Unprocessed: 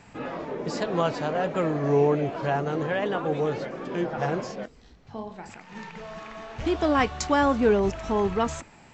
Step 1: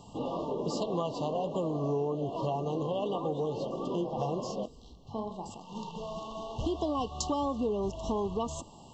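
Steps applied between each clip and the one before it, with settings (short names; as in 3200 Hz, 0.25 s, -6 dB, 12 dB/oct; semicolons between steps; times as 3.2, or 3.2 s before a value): FFT band-reject 1200–2700 Hz; compressor 5:1, threshold -30 dBFS, peak gain reduction 12.5 dB; gain +1 dB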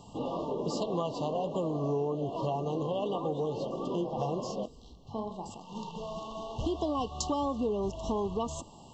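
nothing audible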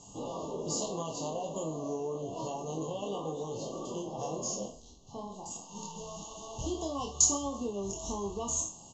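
spectral trails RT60 0.42 s; synth low-pass 6700 Hz, resonance Q 14; doubler 25 ms -3.5 dB; gain -7 dB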